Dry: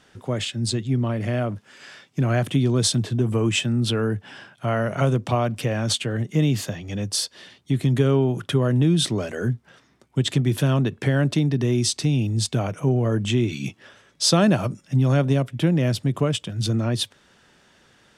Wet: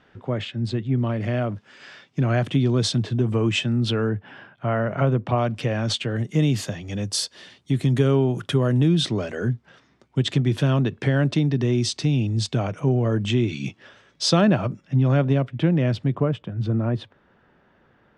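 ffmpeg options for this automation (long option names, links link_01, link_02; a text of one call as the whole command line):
ffmpeg -i in.wav -af "asetnsamples=nb_out_samples=441:pad=0,asendcmd='0.98 lowpass f 5000;4.09 lowpass f 2300;5.38 lowpass f 5100;6.16 lowpass f 9800;8.88 lowpass f 5400;14.41 lowpass f 3100;16.15 lowpass f 1500',lowpass=2600" out.wav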